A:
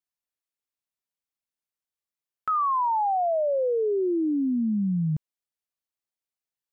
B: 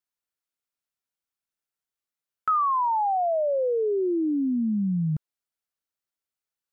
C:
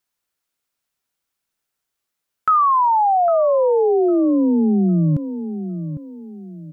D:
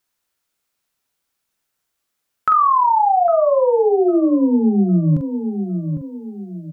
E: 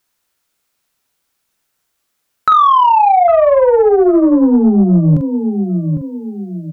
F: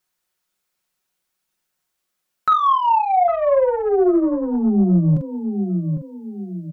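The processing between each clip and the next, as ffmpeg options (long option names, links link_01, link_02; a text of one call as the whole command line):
ffmpeg -i in.wav -af "equalizer=frequency=1400:width_type=o:width=0.26:gain=5.5" out.wav
ffmpeg -i in.wav -filter_complex "[0:a]asplit=2[link_01][link_02];[link_02]alimiter=level_in=3.5dB:limit=-24dB:level=0:latency=1,volume=-3.5dB,volume=-2dB[link_03];[link_01][link_03]amix=inputs=2:normalize=0,asplit=2[link_04][link_05];[link_05]adelay=804,lowpass=frequency=830:poles=1,volume=-10dB,asplit=2[link_06][link_07];[link_07]adelay=804,lowpass=frequency=830:poles=1,volume=0.37,asplit=2[link_08][link_09];[link_09]adelay=804,lowpass=frequency=830:poles=1,volume=0.37,asplit=2[link_10][link_11];[link_11]adelay=804,lowpass=frequency=830:poles=1,volume=0.37[link_12];[link_04][link_06][link_08][link_10][link_12]amix=inputs=5:normalize=0,volume=5.5dB" out.wav
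ffmpeg -i in.wav -filter_complex "[0:a]asplit=2[link_01][link_02];[link_02]acompressor=threshold=-24dB:ratio=6,volume=0dB[link_03];[link_01][link_03]amix=inputs=2:normalize=0,asplit=2[link_04][link_05];[link_05]adelay=44,volume=-7dB[link_06];[link_04][link_06]amix=inputs=2:normalize=0,volume=-2.5dB" out.wav
ffmpeg -i in.wav -af "acontrast=67" out.wav
ffmpeg -i in.wav -af "aecho=1:1:5.5:0.51,volume=-8.5dB" out.wav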